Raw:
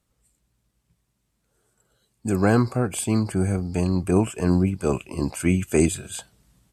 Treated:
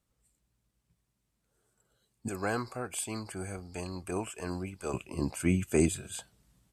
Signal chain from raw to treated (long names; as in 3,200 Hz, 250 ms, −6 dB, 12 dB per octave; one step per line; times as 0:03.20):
0:02.28–0:04.94: parametric band 150 Hz −13.5 dB 2.9 octaves
level −6.5 dB